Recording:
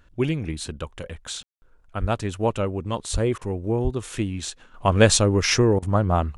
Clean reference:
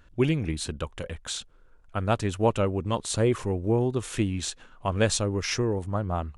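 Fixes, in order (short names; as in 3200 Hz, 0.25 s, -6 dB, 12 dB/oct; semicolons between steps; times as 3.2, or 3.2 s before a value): 2–2.12 HPF 140 Hz 24 dB/oct; 3.12–3.24 HPF 140 Hz 24 dB/oct; 3.83–3.95 HPF 140 Hz 24 dB/oct; room tone fill 1.43–1.62; interpolate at 3.38/5.79, 33 ms; 4.74 gain correction -8 dB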